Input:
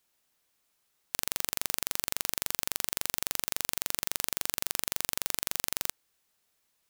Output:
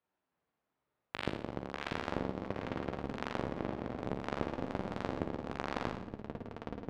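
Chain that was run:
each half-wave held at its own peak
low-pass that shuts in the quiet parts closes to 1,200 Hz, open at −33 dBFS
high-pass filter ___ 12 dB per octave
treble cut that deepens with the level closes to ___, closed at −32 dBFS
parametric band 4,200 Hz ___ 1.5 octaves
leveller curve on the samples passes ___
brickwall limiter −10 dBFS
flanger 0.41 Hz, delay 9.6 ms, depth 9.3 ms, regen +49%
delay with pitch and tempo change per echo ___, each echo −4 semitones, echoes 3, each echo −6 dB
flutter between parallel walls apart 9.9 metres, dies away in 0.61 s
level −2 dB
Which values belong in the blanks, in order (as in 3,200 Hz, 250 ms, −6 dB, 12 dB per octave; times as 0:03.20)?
64 Hz, 480 Hz, +3.5 dB, 1, 312 ms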